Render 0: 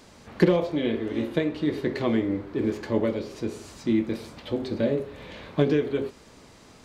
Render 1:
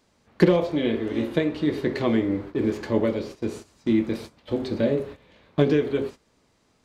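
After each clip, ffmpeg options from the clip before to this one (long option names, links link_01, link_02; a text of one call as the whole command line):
ffmpeg -i in.wav -af "agate=range=-16dB:threshold=-38dB:ratio=16:detection=peak,volume=2dB" out.wav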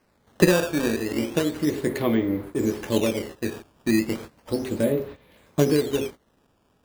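ffmpeg -i in.wav -af "acrusher=samples=12:mix=1:aa=0.000001:lfo=1:lforange=19.2:lforate=0.34" out.wav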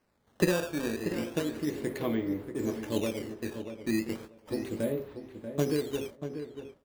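ffmpeg -i in.wav -filter_complex "[0:a]asplit=2[link_01][link_02];[link_02]adelay=637,lowpass=frequency=2100:poles=1,volume=-9dB,asplit=2[link_03][link_04];[link_04]adelay=637,lowpass=frequency=2100:poles=1,volume=0.18,asplit=2[link_05][link_06];[link_06]adelay=637,lowpass=frequency=2100:poles=1,volume=0.18[link_07];[link_01][link_03][link_05][link_07]amix=inputs=4:normalize=0,volume=-8.5dB" out.wav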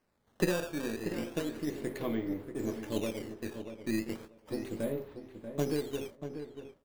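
ffmpeg -i in.wav -af "aeval=exprs='if(lt(val(0),0),0.708*val(0),val(0))':channel_layout=same,volume=-2dB" out.wav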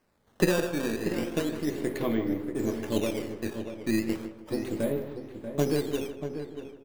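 ffmpeg -i in.wav -filter_complex "[0:a]asplit=2[link_01][link_02];[link_02]adelay=157,lowpass=frequency=1900:poles=1,volume=-10dB,asplit=2[link_03][link_04];[link_04]adelay=157,lowpass=frequency=1900:poles=1,volume=0.32,asplit=2[link_05][link_06];[link_06]adelay=157,lowpass=frequency=1900:poles=1,volume=0.32,asplit=2[link_07][link_08];[link_08]adelay=157,lowpass=frequency=1900:poles=1,volume=0.32[link_09];[link_01][link_03][link_05][link_07][link_09]amix=inputs=5:normalize=0,volume=5.5dB" out.wav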